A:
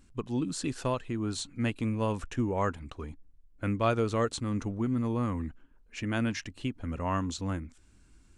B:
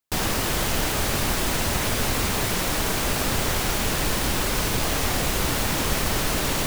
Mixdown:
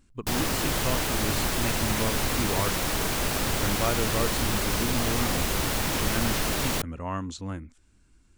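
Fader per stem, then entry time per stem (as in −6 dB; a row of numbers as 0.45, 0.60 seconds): −1.5, −3.0 decibels; 0.00, 0.15 seconds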